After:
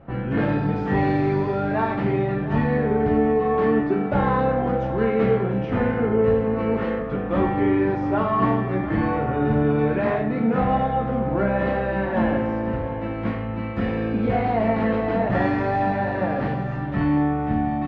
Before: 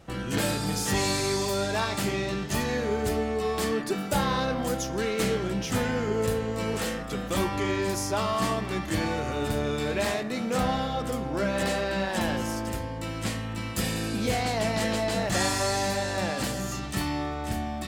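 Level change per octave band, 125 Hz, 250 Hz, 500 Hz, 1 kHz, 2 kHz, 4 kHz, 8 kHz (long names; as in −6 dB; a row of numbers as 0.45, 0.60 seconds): +7.0 dB, +8.0 dB, +6.5 dB, +6.5 dB, +1.5 dB, below −10 dB, below −35 dB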